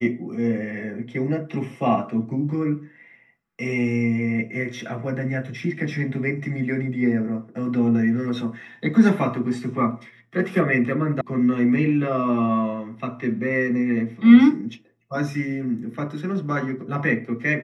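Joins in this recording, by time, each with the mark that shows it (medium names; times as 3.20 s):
11.21 s: sound stops dead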